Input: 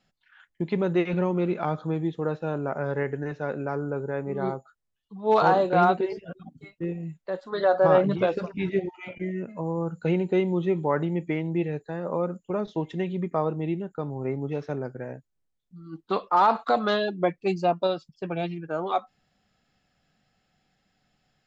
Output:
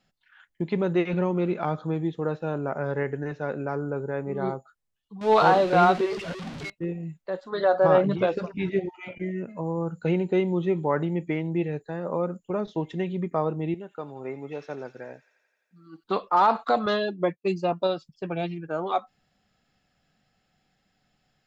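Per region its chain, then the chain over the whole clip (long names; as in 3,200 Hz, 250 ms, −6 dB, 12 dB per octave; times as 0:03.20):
0:05.21–0:06.70: converter with a step at zero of −33 dBFS + low-pass filter 4,100 Hz + high-shelf EQ 2,500 Hz +8.5 dB
0:13.74–0:16.04: high-pass filter 530 Hz 6 dB per octave + delay with a high-pass on its return 86 ms, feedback 74%, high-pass 2,900 Hz, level −7 dB
0:16.86–0:17.72: downward expander −33 dBFS + notch comb filter 760 Hz
whole clip: no processing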